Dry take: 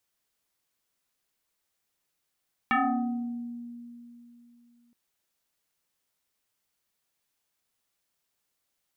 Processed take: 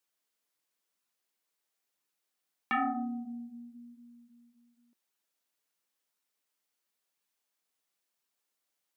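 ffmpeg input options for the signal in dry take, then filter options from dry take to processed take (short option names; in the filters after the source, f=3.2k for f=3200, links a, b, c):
-f lavfi -i "aevalsrc='0.1*pow(10,-3*t/3.17)*sin(2*PI*238*t+4.3*pow(10,-3*t/1.14)*sin(2*PI*2.14*238*t))':d=2.22:s=44100"
-af "highpass=210,flanger=delay=0.7:depth=6.3:regen=-58:speed=0.97:shape=sinusoidal"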